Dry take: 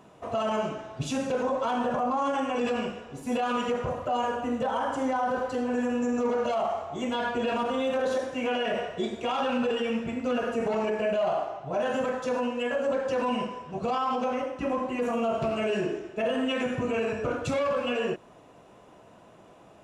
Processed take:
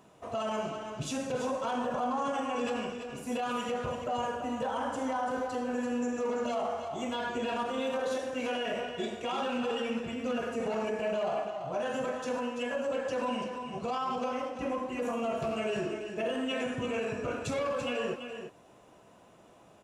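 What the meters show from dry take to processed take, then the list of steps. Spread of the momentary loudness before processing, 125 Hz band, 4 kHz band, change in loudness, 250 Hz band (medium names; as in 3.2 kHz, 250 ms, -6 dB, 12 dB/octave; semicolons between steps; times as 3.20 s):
4 LU, -5.0 dB, -3.0 dB, -4.5 dB, -5.0 dB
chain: treble shelf 4.8 kHz +7 dB; delay 337 ms -8 dB; trim -5.5 dB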